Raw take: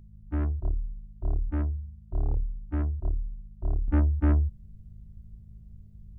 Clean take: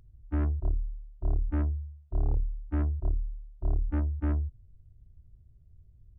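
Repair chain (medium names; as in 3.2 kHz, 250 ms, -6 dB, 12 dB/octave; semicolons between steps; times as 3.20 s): de-hum 52.4 Hz, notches 4; trim 0 dB, from 3.88 s -6 dB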